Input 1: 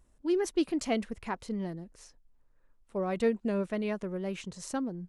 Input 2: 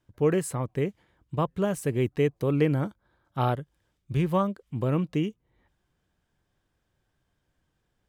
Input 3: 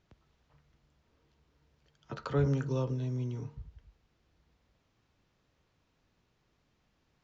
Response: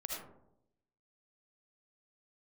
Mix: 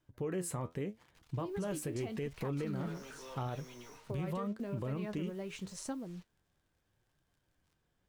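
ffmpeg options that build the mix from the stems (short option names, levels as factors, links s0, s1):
-filter_complex "[0:a]alimiter=level_in=1.19:limit=0.0631:level=0:latency=1:release=459,volume=0.841,adelay=1150,volume=1.26[s0];[1:a]acompressor=threshold=0.0447:ratio=4,volume=1.12[s1];[2:a]highpass=f=820:p=1,crystalizer=i=6.5:c=0,asplit=2[s2][s3];[s3]highpass=f=720:p=1,volume=50.1,asoftclip=type=tanh:threshold=0.112[s4];[s2][s4]amix=inputs=2:normalize=0,lowpass=f=1500:p=1,volume=0.501,adelay=500,volume=0.168[s5];[s0][s5]amix=inputs=2:normalize=0,acrusher=bits=8:mix=0:aa=0.5,acompressor=threshold=0.0224:ratio=6,volume=1[s6];[s1][s6]amix=inputs=2:normalize=0,flanger=delay=5.9:depth=7.5:regen=66:speed=0.83:shape=triangular,alimiter=level_in=1.88:limit=0.0631:level=0:latency=1:release=63,volume=0.531"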